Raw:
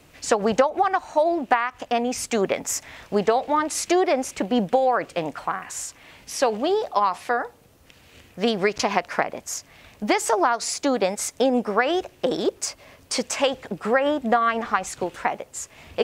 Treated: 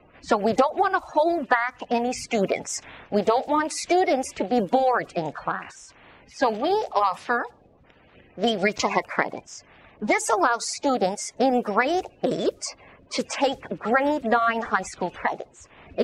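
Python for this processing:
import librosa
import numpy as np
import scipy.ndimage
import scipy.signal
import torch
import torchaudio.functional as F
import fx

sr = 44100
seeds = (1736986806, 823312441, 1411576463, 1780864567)

y = fx.spec_quant(x, sr, step_db=30)
y = fx.env_lowpass(y, sr, base_hz=1700.0, full_db=-19.0)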